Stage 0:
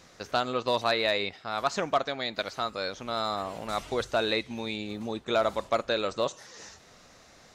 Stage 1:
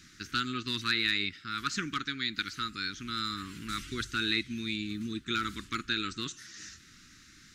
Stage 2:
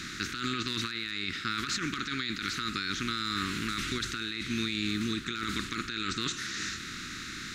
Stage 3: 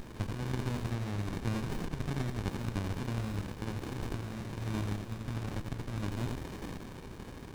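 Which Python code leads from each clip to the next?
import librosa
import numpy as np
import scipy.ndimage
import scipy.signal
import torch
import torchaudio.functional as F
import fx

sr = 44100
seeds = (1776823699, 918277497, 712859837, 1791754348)

y1 = scipy.signal.sosfilt(scipy.signal.ellip(3, 1.0, 80, [320.0, 1400.0], 'bandstop', fs=sr, output='sos'), x)
y1 = F.gain(torch.from_numpy(y1), 1.5).numpy()
y2 = fx.bin_compress(y1, sr, power=0.6)
y2 = fx.over_compress(y2, sr, threshold_db=-33.0, ratio=-1.0)
y3 = fx.brickwall_highpass(y2, sr, low_hz=1300.0)
y3 = y3 + 10.0 ** (-3.5 / 20.0) * np.pad(y3, (int(87 * sr / 1000.0), 0))[:len(y3)]
y3 = fx.running_max(y3, sr, window=65)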